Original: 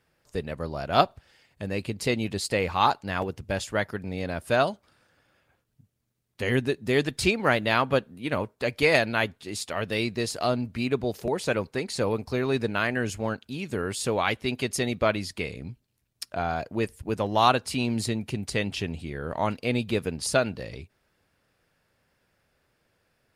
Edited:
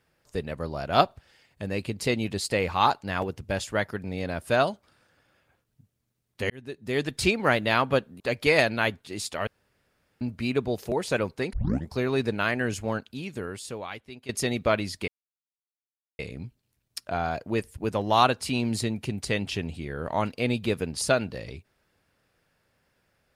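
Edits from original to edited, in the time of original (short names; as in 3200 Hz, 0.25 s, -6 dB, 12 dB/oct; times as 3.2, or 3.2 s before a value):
6.5–7.22 fade in
8.2–8.56 cut
9.83–10.57 room tone
11.89 tape start 0.39 s
13.43–14.65 fade out quadratic, to -16 dB
15.44 insert silence 1.11 s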